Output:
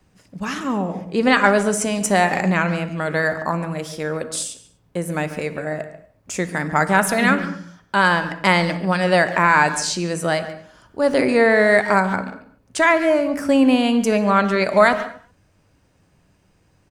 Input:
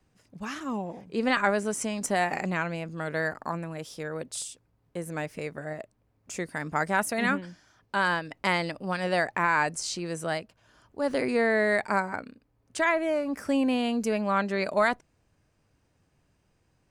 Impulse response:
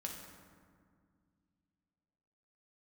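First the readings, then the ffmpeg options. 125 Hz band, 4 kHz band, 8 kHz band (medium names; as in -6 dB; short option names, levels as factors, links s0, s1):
+11.5 dB, +9.5 dB, +9.5 dB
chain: -filter_complex "[0:a]asplit=2[s0][s1];[s1]adelay=140,highpass=300,lowpass=3400,asoftclip=type=hard:threshold=0.1,volume=0.2[s2];[s0][s2]amix=inputs=2:normalize=0,asplit=2[s3][s4];[1:a]atrim=start_sample=2205,afade=t=out:st=0.3:d=0.01,atrim=end_sample=13671[s5];[s4][s5]afir=irnorm=-1:irlink=0,volume=0.708[s6];[s3][s6]amix=inputs=2:normalize=0,volume=2"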